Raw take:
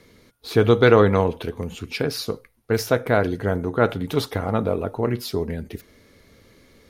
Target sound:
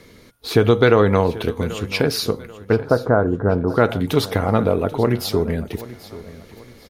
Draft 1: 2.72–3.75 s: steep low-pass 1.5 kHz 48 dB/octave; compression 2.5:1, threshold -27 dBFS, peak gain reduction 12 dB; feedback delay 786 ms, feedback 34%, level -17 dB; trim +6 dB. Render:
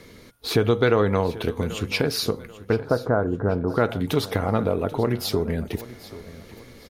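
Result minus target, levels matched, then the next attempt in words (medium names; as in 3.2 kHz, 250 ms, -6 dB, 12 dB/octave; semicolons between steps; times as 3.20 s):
compression: peak gain reduction +5.5 dB
2.72–3.75 s: steep low-pass 1.5 kHz 48 dB/octave; compression 2.5:1, threshold -18 dBFS, peak gain reduction 6.5 dB; feedback delay 786 ms, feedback 34%, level -17 dB; trim +6 dB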